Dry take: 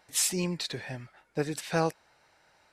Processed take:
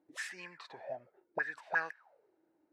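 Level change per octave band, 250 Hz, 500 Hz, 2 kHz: -23.5 dB, -12.0 dB, +3.0 dB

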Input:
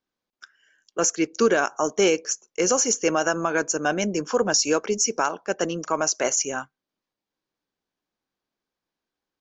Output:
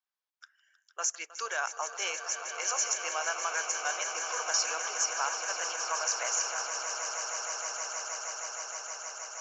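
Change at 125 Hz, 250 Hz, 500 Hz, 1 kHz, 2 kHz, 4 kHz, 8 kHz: under -40 dB, under -30 dB, -17.5 dB, -6.0 dB, -4.5 dB, -4.5 dB, no reading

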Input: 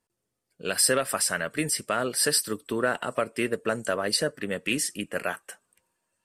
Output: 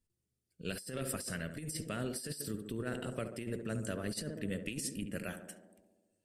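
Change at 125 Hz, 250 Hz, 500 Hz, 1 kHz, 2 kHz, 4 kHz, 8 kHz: -1.5 dB, -7.0 dB, -13.5 dB, -17.5 dB, -15.5 dB, -16.5 dB, -16.0 dB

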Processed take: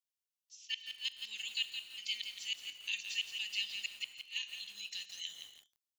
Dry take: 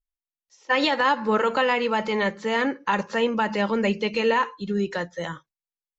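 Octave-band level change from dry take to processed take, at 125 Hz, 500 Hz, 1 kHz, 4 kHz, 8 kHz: under -40 dB, under -40 dB, under -40 dB, -4.0 dB, no reading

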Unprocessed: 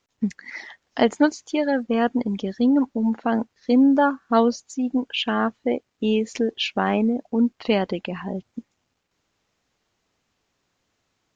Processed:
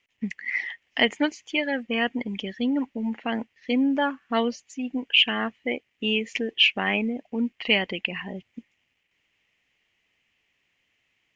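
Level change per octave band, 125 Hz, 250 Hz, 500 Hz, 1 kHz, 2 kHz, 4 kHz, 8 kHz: -6.5 dB, -6.5 dB, -6.5 dB, -6.5 dB, +5.5 dB, +7.0 dB, no reading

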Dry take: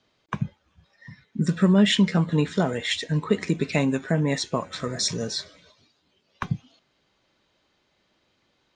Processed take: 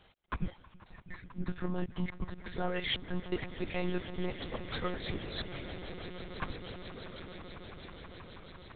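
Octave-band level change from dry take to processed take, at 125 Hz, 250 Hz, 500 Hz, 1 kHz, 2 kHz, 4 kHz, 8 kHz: -15.0 dB, -15.5 dB, -11.5 dB, -9.0 dB, -9.5 dB, -12.0 dB, under -40 dB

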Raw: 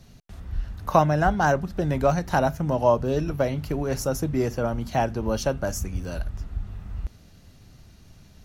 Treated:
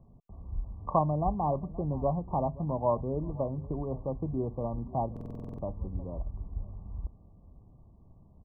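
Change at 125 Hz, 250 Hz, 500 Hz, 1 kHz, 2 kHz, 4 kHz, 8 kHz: -6.5 dB, -7.5 dB, -8.5 dB, -7.5 dB, under -40 dB, under -40 dB, under -40 dB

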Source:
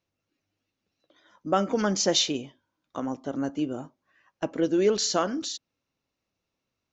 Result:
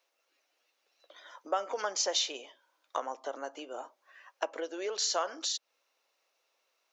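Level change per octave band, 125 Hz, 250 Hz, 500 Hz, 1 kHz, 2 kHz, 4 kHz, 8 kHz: under -35 dB, -20.5 dB, -9.0 dB, -4.0 dB, -4.0 dB, -4.5 dB, no reading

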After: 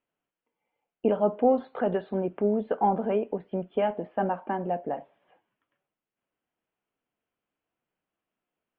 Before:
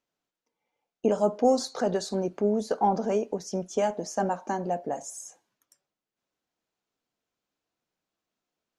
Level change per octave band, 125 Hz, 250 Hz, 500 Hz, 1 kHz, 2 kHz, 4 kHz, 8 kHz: 0.0 dB, 0.0 dB, 0.0 dB, 0.0 dB, 0.0 dB, under -10 dB, under -40 dB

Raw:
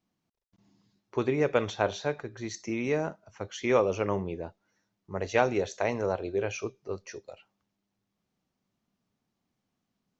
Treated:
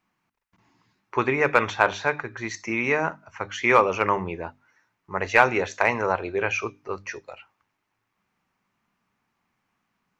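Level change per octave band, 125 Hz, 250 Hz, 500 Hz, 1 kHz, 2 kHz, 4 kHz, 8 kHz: +1.0 dB, +2.0 dB, +3.0 dB, +11.0 dB, +13.0 dB, +5.0 dB, no reading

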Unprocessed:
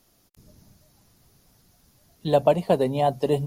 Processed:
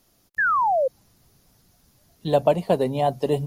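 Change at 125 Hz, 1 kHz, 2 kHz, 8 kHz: 0.0 dB, +5.5 dB, +16.0 dB, no reading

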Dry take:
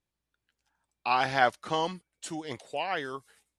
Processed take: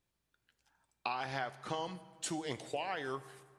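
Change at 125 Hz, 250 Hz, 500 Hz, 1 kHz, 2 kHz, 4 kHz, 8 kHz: -4.5 dB, -5.0 dB, -8.0 dB, -11.0 dB, -11.0 dB, -8.0 dB, +0.5 dB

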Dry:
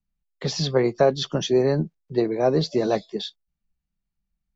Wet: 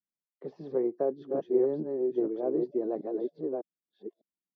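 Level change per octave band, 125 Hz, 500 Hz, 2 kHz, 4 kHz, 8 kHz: -21.5 dB, -6.5 dB, under -20 dB, under -35 dB, no reading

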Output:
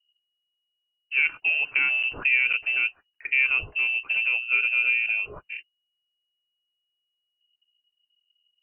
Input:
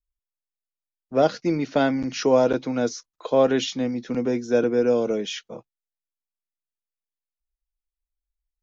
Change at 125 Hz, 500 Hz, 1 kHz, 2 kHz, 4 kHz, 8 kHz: under -15 dB, -29.0 dB, -14.5 dB, +15.0 dB, -0.5 dB, no reading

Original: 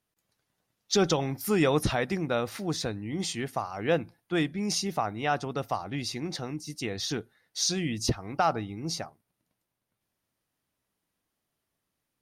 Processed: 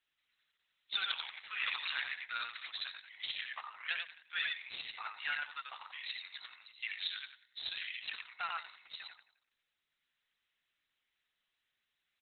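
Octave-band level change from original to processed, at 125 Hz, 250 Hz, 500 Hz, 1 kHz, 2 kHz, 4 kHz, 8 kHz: under -40 dB, under -40 dB, -36.0 dB, -14.0 dB, -2.0 dB, -4.0 dB, under -40 dB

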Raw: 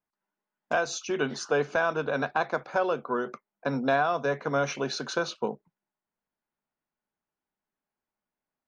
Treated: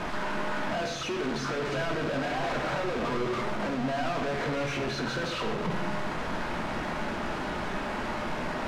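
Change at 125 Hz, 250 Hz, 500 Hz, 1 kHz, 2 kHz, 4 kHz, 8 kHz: +4.5 dB, +3.0 dB, -2.5 dB, -0.5 dB, -0.5 dB, +3.0 dB, -3.5 dB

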